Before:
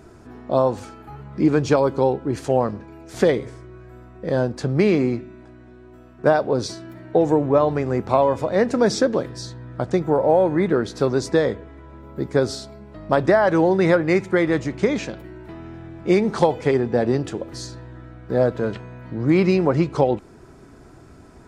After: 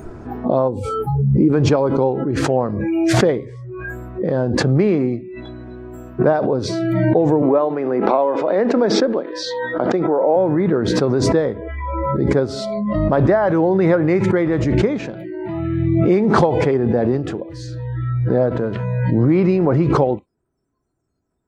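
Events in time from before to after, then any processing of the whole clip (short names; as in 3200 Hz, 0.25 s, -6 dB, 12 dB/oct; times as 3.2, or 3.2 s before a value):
0.68–1.53 spectral gain 580–7400 Hz -9 dB
7.42–10.36 three-band isolator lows -24 dB, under 210 Hz, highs -16 dB, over 5500 Hz
whole clip: spectral noise reduction 30 dB; LPF 1200 Hz 6 dB/oct; backwards sustainer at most 21 dB/s; gain +1.5 dB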